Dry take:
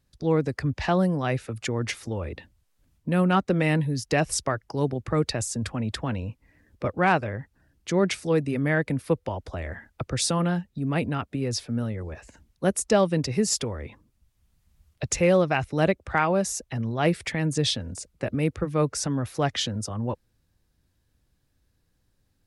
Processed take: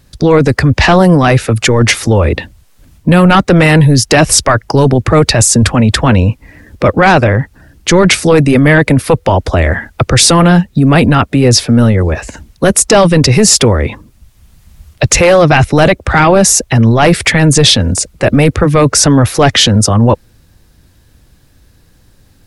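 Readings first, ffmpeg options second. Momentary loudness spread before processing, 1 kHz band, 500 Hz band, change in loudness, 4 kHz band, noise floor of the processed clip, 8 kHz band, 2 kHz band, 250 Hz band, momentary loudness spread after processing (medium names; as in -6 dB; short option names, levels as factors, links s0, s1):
12 LU, +17.0 dB, +16.0 dB, +17.5 dB, +20.0 dB, -47 dBFS, +20.5 dB, +18.0 dB, +17.0 dB, 7 LU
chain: -af "apsyclip=18.8,volume=0.794"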